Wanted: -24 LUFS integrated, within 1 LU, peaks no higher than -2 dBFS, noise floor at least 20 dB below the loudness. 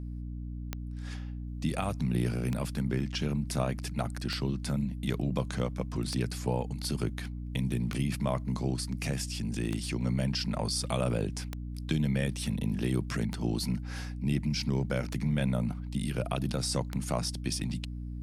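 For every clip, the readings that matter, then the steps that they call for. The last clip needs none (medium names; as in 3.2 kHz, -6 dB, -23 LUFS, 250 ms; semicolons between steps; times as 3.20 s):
clicks found 10; hum 60 Hz; highest harmonic 300 Hz; hum level -35 dBFS; loudness -32.5 LUFS; peak level -15.5 dBFS; loudness target -24.0 LUFS
-> de-click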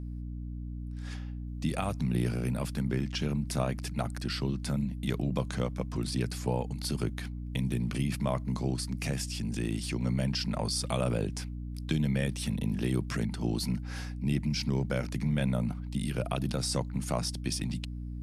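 clicks found 0; hum 60 Hz; highest harmonic 300 Hz; hum level -35 dBFS
-> hum notches 60/120/180/240/300 Hz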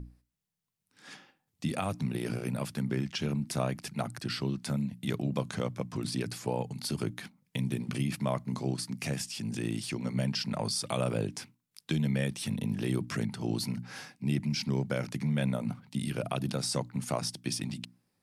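hum not found; loudness -33.5 LUFS; peak level -16.5 dBFS; loudness target -24.0 LUFS
-> trim +9.5 dB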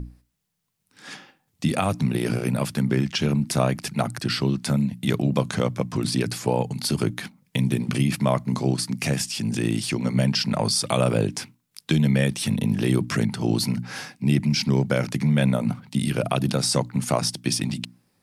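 loudness -24.0 LUFS; peak level -7.0 dBFS; noise floor -71 dBFS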